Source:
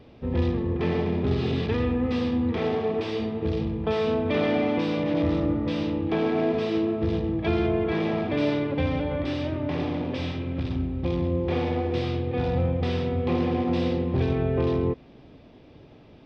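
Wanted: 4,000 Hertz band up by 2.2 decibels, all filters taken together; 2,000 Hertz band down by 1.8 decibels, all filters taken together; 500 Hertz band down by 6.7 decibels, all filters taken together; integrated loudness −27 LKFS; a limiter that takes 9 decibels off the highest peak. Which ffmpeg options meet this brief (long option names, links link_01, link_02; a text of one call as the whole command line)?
ffmpeg -i in.wav -af "equalizer=frequency=500:width_type=o:gain=-8.5,equalizer=frequency=2000:width_type=o:gain=-3,equalizer=frequency=4000:width_type=o:gain=4,volume=4.5dB,alimiter=limit=-18.5dB:level=0:latency=1" out.wav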